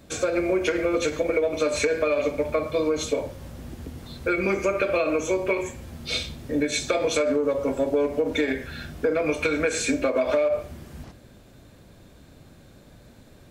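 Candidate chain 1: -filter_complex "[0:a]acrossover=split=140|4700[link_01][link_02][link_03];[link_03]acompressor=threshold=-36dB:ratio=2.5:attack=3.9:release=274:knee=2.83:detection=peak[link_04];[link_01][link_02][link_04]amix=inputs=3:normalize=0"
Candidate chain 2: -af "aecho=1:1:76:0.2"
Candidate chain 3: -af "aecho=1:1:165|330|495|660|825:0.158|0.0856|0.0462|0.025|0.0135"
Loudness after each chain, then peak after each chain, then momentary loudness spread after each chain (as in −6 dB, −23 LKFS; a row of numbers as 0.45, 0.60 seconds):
−25.0, −24.5, −24.5 LKFS; −10.0, −9.5, −9.5 dBFS; 14, 14, 14 LU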